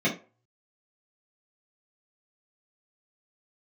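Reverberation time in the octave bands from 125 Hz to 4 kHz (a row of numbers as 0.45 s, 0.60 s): 0.45 s, 0.25 s, 0.35 s, 0.35 s, 0.25 s, 0.20 s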